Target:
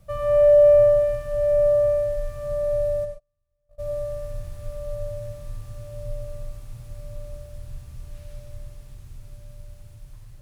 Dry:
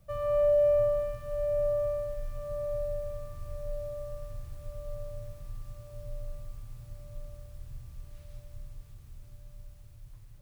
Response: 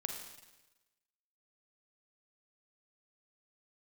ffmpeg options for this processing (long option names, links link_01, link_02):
-filter_complex "[0:a]asplit=3[link_01][link_02][link_03];[link_01]afade=type=out:start_time=3.04:duration=0.02[link_04];[link_02]agate=range=-45dB:threshold=-28dB:ratio=16:detection=peak,afade=type=in:start_time=3.04:duration=0.02,afade=type=out:start_time=3.78:duration=0.02[link_05];[link_03]afade=type=in:start_time=3.78:duration=0.02[link_06];[link_04][link_05][link_06]amix=inputs=3:normalize=0[link_07];[1:a]atrim=start_sample=2205,atrim=end_sample=3528,asetrate=24696,aresample=44100[link_08];[link_07][link_08]afir=irnorm=-1:irlink=0,volume=5dB"